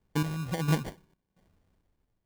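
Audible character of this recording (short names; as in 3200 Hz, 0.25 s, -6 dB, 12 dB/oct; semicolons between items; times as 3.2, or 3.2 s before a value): phasing stages 2, 2.1 Hz, lowest notch 570–1200 Hz; aliases and images of a low sample rate 1300 Hz, jitter 0%; random-step tremolo 4.4 Hz, depth 85%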